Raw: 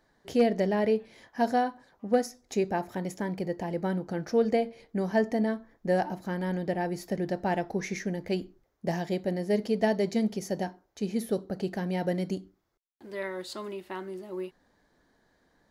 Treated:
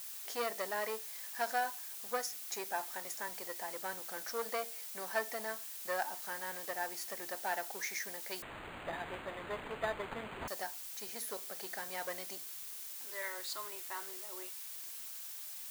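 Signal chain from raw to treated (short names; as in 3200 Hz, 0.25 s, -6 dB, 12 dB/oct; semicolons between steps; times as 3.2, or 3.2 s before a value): one diode to ground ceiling -21 dBFS; HPF 1100 Hz 12 dB/oct; bell 2900 Hz -6.5 dB 0.83 oct; added noise blue -48 dBFS; 8.42–10.48 decimation joined by straight lines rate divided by 8×; gain +2 dB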